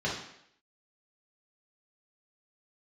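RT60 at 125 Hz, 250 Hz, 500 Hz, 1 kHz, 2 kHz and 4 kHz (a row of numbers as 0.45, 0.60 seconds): 0.60, 0.70, 0.70, 0.70, 0.75, 0.70 seconds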